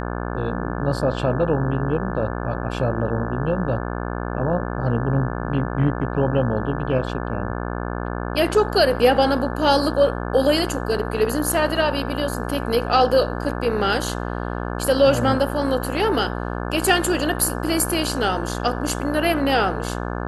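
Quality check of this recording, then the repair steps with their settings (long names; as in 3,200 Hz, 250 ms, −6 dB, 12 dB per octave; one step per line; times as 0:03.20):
mains buzz 60 Hz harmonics 29 −27 dBFS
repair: hum removal 60 Hz, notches 29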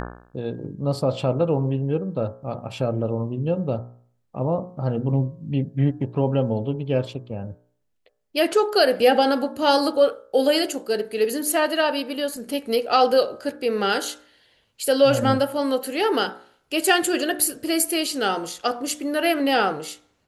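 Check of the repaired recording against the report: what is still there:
none of them is left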